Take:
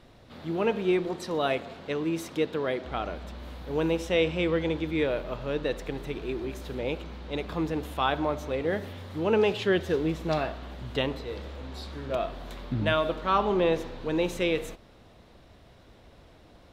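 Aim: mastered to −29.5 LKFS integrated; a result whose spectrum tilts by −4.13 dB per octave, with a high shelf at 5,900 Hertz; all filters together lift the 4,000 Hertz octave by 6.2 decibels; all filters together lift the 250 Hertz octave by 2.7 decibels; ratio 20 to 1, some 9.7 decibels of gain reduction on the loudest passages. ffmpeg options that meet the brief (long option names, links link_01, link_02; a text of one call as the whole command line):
ffmpeg -i in.wav -af "equalizer=frequency=250:width_type=o:gain=4,equalizer=frequency=4000:width_type=o:gain=6.5,highshelf=frequency=5900:gain=4.5,acompressor=threshold=-27dB:ratio=20,volume=4dB" out.wav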